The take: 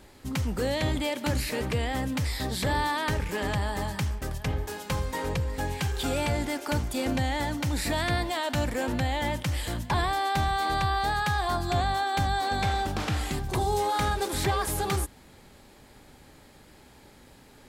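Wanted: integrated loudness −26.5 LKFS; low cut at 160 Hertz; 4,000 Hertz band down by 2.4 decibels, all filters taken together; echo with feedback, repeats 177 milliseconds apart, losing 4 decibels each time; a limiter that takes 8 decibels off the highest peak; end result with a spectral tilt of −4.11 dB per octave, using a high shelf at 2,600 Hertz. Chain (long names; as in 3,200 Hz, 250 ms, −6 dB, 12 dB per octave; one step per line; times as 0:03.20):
high-pass filter 160 Hz
high-shelf EQ 2,600 Hz +5.5 dB
parametric band 4,000 Hz −7.5 dB
brickwall limiter −23 dBFS
repeating echo 177 ms, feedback 63%, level −4 dB
level +4 dB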